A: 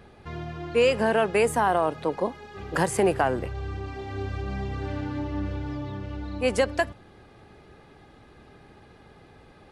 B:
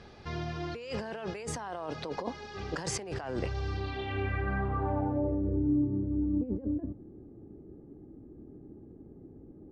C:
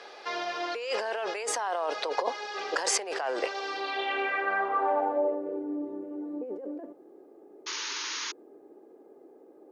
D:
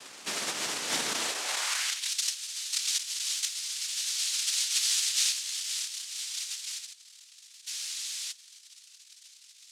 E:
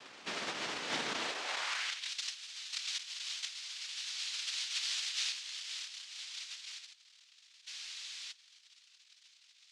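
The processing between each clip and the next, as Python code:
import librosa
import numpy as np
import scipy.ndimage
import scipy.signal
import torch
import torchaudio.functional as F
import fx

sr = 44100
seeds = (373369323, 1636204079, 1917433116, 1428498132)

y1 = fx.over_compress(x, sr, threshold_db=-30.0, ratio=-1.0)
y1 = fx.filter_sweep_lowpass(y1, sr, from_hz=5400.0, to_hz=310.0, start_s=3.68, end_s=5.67, q=3.1)
y1 = y1 * librosa.db_to_amplitude(-4.5)
y2 = scipy.signal.sosfilt(scipy.signal.butter(4, 460.0, 'highpass', fs=sr, output='sos'), y1)
y2 = fx.spec_paint(y2, sr, seeds[0], shape='noise', start_s=7.66, length_s=0.66, low_hz=850.0, high_hz=6800.0, level_db=-44.0)
y2 = y2 * librosa.db_to_amplitude(9.0)
y3 = fx.noise_vocoder(y2, sr, seeds[1], bands=1)
y3 = fx.filter_sweep_highpass(y3, sr, from_hz=200.0, to_hz=3800.0, start_s=1.13, end_s=2.12, q=1.0)
y4 = scipy.signal.sosfilt(scipy.signal.butter(2, 3800.0, 'lowpass', fs=sr, output='sos'), y3)
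y4 = y4 * librosa.db_to_amplitude(-3.0)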